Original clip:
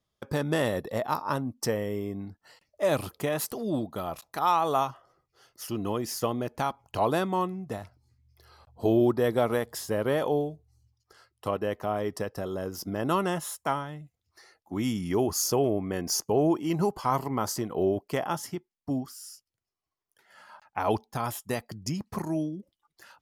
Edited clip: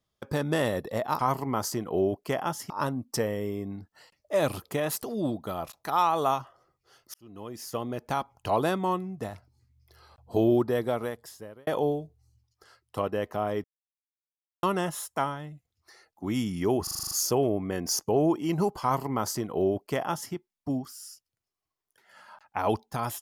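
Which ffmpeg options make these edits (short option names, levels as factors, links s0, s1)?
-filter_complex "[0:a]asplit=14[s0][s1][s2][s3][s4][s5][s6][s7][s8][s9][s10][s11][s12][s13];[s0]atrim=end=1.192[s14];[s1]atrim=start=17.028:end=18.542[s15];[s2]atrim=start=1.188:end=5.63,asetpts=PTS-STARTPTS,afade=t=out:st=4.438:d=0.004:c=hsin[s16];[s3]atrim=start=5.63:end=10.16,asetpts=PTS-STARTPTS,afade=t=in:d=1.04,afade=t=out:st=3.37:d=1.16[s17];[s4]atrim=start=10.16:end=12.13,asetpts=PTS-STARTPTS,afade=t=in:d=0.004:c=hsin,afade=t=out:st=1.966:d=0.004:c=hsin[s18];[s5]atrim=start=12.13:end=13.12,asetpts=PTS-STARTPTS,volume=0[s19];[s6]atrim=start=13.12:end=15.362,asetpts=PTS-STARTPTS,afade=t=in:d=0.004:c=hsin[s20];[s7]atrim=start=15.318:end=15.362[s21];[s8]atrim=start=15.318:end=15.362[s22];[s9]atrim=start=15.318:end=15.362[s23];[s10]atrim=start=15.318:end=15.362[s24];[s11]atrim=start=15.318:end=15.362[s25];[s12]atrim=start=15.318:end=15.362[s26];[s13]atrim=start=15.318[s27];[s14][s15]acrossfade=d=0.004:c1=hsin:c2=hsin[s28];[s16][s17][s18][s19][s20]concat=n=5:v=0:a=1[s29];[s28][s29]acrossfade=d=0.004:c1=hsin:c2=hsin[s30];[s30][s21]acrossfade=d=0.004:c1=hsin:c2=hsin[s31];[s31][s22]acrossfade=d=0.004:c1=hsin:c2=hsin[s32];[s32][s23]acrossfade=d=0.004:c1=hsin:c2=hsin[s33];[s33][s24]acrossfade=d=0.004:c1=hsin:c2=hsin[s34];[s34][s25]acrossfade=d=0.004:c1=hsin:c2=hsin[s35];[s35][s26]acrossfade=d=0.004:c1=hsin:c2=hsin[s36];[s36][s27]acrossfade=d=0.004:c1=hsin:c2=hsin"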